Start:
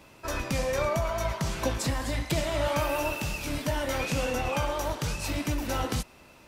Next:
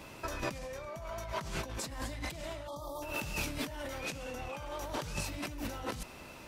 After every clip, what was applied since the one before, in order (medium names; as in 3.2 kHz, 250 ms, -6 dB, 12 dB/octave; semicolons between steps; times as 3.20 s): spectral selection erased 2.68–3.02 s, 1.3–3.2 kHz; compressor with a negative ratio -37 dBFS, ratio -1; trim -3 dB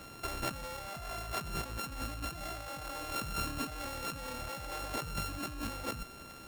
sorted samples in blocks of 32 samples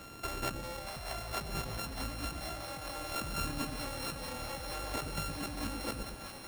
two-band feedback delay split 550 Hz, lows 116 ms, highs 634 ms, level -5.5 dB